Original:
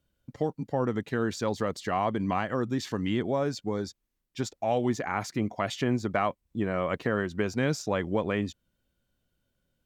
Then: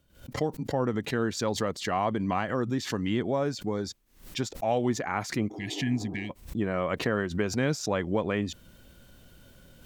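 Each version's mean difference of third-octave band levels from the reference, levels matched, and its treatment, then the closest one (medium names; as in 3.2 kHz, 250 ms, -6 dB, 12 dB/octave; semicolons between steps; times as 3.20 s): 2.5 dB: reverse; upward compressor, threshold -34 dBFS; reverse; spectral replace 5.53–6.28 s, 290–1600 Hz before; swell ahead of each attack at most 130 dB/s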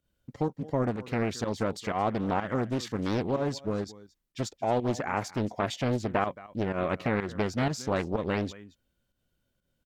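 4.0 dB: volume shaper 125 bpm, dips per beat 1, -10 dB, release 121 ms; delay 223 ms -19 dB; loudspeaker Doppler distortion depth 0.84 ms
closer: first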